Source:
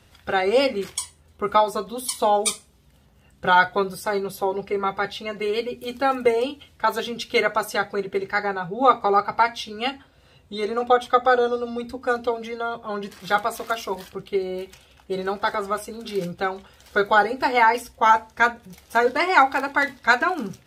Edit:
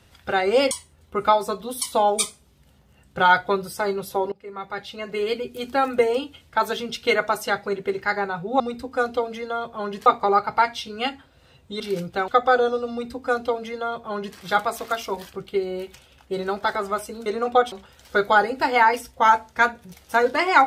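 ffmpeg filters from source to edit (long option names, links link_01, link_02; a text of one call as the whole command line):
ffmpeg -i in.wav -filter_complex "[0:a]asplit=9[link_01][link_02][link_03][link_04][link_05][link_06][link_07][link_08][link_09];[link_01]atrim=end=0.712[link_10];[link_02]atrim=start=0.978:end=4.59,asetpts=PTS-STARTPTS,afade=type=out:start_time=3.608:duration=0.004:curve=hsin:silence=0.0707946[link_11];[link_03]atrim=start=4.59:end=8.872,asetpts=PTS-STARTPTS,afade=type=in:duration=0.94:silence=0.0707946[link_12];[link_04]atrim=start=11.698:end=13.162[link_13];[link_05]atrim=start=8.868:end=10.612[link_14];[link_06]atrim=start=16.048:end=16.532[link_15];[link_07]atrim=start=11.068:end=16.052[link_16];[link_08]atrim=start=10.608:end=11.072[link_17];[link_09]atrim=start=16.528[link_18];[link_11][link_12]concat=n=2:v=0:a=1[link_19];[link_10][link_19]acrossfade=duration=0.004:curve1=hsin:curve2=hsin[link_20];[link_20][link_13]acrossfade=duration=0.004:curve1=hsin:curve2=hsin[link_21];[link_21][link_14]acrossfade=duration=0.004:curve1=hsin:curve2=hsin[link_22];[link_22][link_15]acrossfade=duration=0.004:curve1=hsin:curve2=hsin[link_23];[link_23][link_16]acrossfade=duration=0.004:curve1=hsin:curve2=hsin[link_24];[link_24][link_17]acrossfade=duration=0.004:curve1=hsin:curve2=hsin[link_25];[link_25][link_18]acrossfade=duration=0.004:curve1=hsin:curve2=hsin" out.wav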